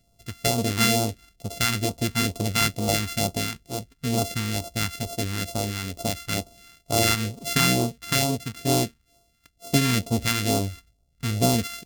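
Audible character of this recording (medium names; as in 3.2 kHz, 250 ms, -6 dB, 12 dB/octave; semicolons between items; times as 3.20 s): a buzz of ramps at a fixed pitch in blocks of 64 samples; phasing stages 2, 2.2 Hz, lowest notch 580–1700 Hz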